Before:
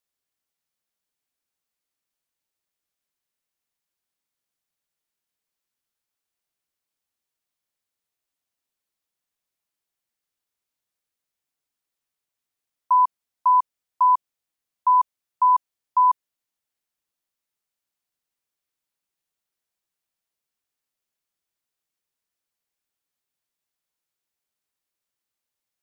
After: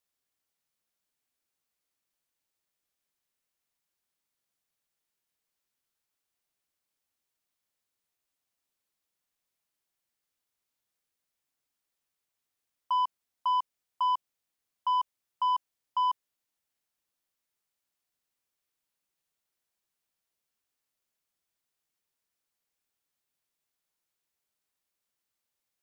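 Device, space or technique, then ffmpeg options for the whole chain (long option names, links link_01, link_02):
soft clipper into limiter: -af "asoftclip=type=tanh:threshold=-16.5dB,alimiter=limit=-23.5dB:level=0:latency=1:release=20"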